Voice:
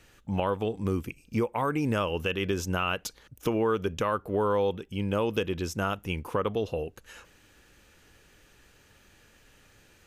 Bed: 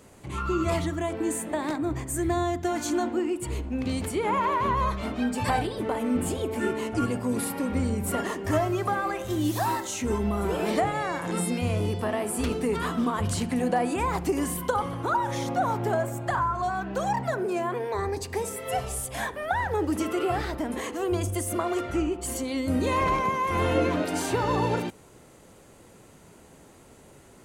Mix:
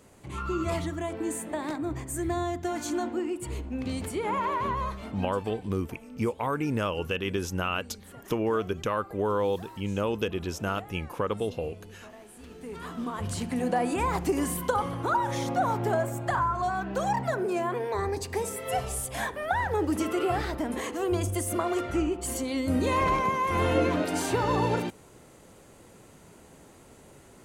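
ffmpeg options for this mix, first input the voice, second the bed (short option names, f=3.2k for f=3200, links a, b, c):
-filter_complex "[0:a]adelay=4850,volume=-1dB[a];[1:a]volume=16.5dB,afade=t=out:st=4.61:d=0.86:silence=0.141254,afade=t=in:st=12.48:d=1.49:silence=0.1[b];[a][b]amix=inputs=2:normalize=0"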